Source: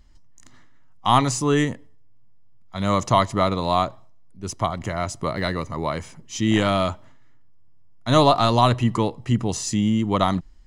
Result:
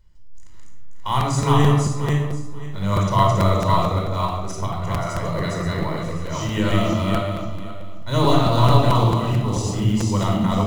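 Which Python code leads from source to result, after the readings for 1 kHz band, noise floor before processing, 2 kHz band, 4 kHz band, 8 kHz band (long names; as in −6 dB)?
0.0 dB, −45 dBFS, 0.0 dB, −0.5 dB, −1.5 dB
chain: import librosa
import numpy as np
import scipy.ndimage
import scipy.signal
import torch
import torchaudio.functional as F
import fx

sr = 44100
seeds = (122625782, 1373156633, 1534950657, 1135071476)

p1 = fx.reverse_delay_fb(x, sr, ms=266, feedback_pct=46, wet_db=0.0)
p2 = fx.quant_float(p1, sr, bits=2)
p3 = p1 + (p2 * librosa.db_to_amplitude(-5.5))
p4 = fx.room_shoebox(p3, sr, seeds[0], volume_m3=2300.0, walls='furnished', distance_m=4.8)
p5 = fx.buffer_crackle(p4, sr, first_s=0.54, period_s=0.22, block=256, kind='repeat')
y = p5 * librosa.db_to_amplitude(-12.0)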